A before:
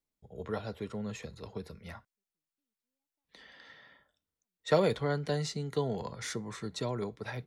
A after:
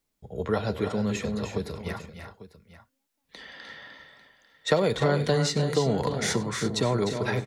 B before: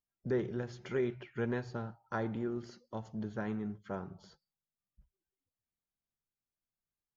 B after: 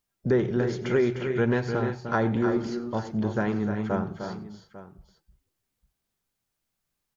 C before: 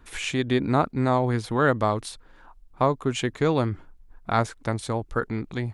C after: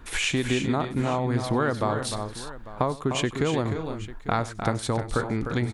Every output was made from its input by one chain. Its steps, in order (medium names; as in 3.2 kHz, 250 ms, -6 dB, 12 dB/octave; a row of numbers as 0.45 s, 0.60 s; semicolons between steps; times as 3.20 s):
compression 6:1, threshold -29 dBFS; on a send: multi-tap echo 96/303/341/847 ms -19/-8/-12.5/-16.5 dB; on the sum: normalise loudness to -27 LUFS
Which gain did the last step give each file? +10.0 dB, +11.5 dB, +7.0 dB